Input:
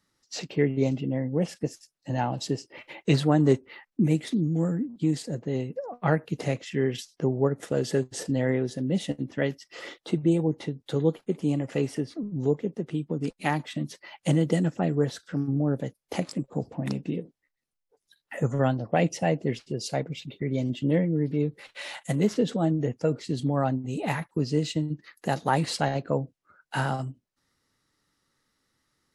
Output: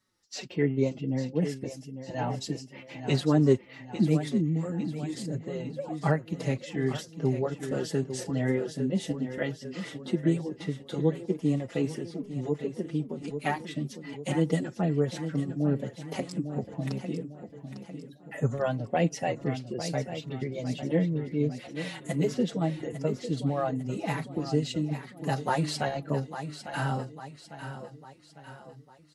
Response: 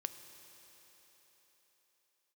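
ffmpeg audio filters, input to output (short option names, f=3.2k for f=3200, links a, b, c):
-filter_complex "[0:a]aecho=1:1:851|1702|2553|3404|4255:0.299|0.143|0.0688|0.033|0.0158,asplit=2[a][b];[b]adelay=4.8,afreqshift=-2.6[c];[a][c]amix=inputs=2:normalize=1"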